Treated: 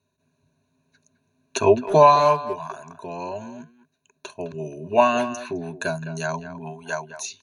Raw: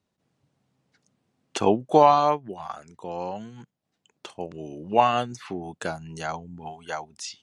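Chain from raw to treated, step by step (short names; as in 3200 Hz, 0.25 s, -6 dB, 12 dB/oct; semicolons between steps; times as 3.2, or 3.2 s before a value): ripple EQ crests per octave 1.5, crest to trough 17 dB; speakerphone echo 0.21 s, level -12 dB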